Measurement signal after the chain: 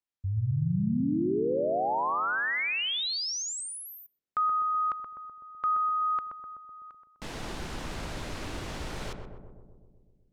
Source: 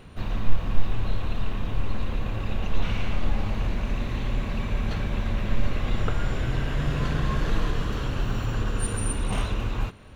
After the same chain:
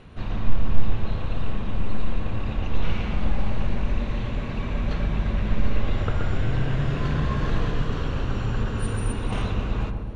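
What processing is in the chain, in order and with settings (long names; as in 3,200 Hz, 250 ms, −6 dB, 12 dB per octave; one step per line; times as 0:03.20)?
high-frequency loss of the air 65 metres
feedback echo with a low-pass in the loop 126 ms, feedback 72%, low-pass 980 Hz, level −4 dB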